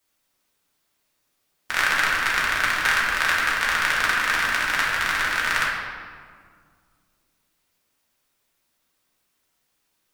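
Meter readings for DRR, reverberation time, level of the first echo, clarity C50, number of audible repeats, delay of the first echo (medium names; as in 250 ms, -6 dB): -5.5 dB, 1.9 s, no echo, 1.0 dB, no echo, no echo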